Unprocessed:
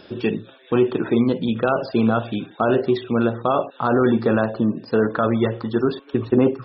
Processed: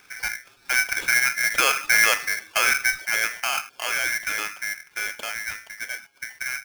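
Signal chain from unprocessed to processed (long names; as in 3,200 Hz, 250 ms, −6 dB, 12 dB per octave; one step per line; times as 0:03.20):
source passing by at 0:01.94, 13 m/s, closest 11 metres
downsampling to 8,000 Hz
ring modulator with a square carrier 1,900 Hz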